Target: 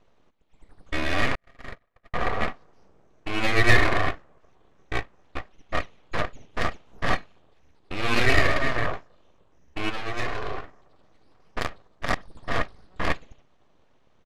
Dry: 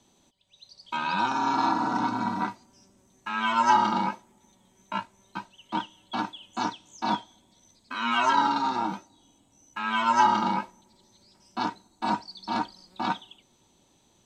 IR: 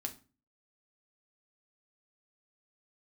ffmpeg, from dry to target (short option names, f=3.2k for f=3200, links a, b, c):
-filter_complex "[0:a]asplit=3[a][b][c];[a]afade=t=out:st=9.89:d=0.02[d];[b]equalizer=f=800:w=0.54:g=-13,afade=t=in:st=9.89:d=0.02,afade=t=out:st=10.62:d=0.02[e];[c]afade=t=in:st=10.62:d=0.02[f];[d][e][f]amix=inputs=3:normalize=0,aeval=exprs='abs(val(0))':c=same,adynamicsmooth=sensitivity=3:basefreq=2.1k,asettb=1/sr,asplit=3[g][h][i];[g]atrim=end=1.354[j];[h]atrim=start=1.35:end=2.14,asetpts=PTS-STARTPTS,afade=t=in:d=0.004:c=qsin,afade=t=out:st=0.786:d=0.004:c=qsin,agate=range=-56dB:threshold=-20dB:ratio=16:detection=peak[k];[i]atrim=start=2.136[l];[j][k]acrossfade=d=0.004:c1=hsin:c2=qsin[m];[m][l]acrossfade=d=0.004:c1=qsin:c2=hsin,asettb=1/sr,asplit=3[n][o][p];[n]atrim=end=11.594[q];[o]atrim=start=11.59:end=12.34,asetpts=PTS-STARTPTS,afade=t=in:d=0.004:c=qsin,afade=t=out:st=0.746:d=0.004:c=qsin,aeval=exprs='0.188*(cos(1*acos(clip(val(0)/0.188,-1,1)))-cos(1*PI/2))+0.0237*(cos(8*acos(clip(val(0)/0.188,-1,1)))-cos(8*PI/2))':c=same[r];[p]atrim=start=12.336[s];[q][r]acrossfade=d=0.004:c1=hsin:c2=qsin[t];[t][s]acrossfade=d=0.004:c1=qsin:c2=hsin,aresample=32000,aresample=44100,volume=6.5dB"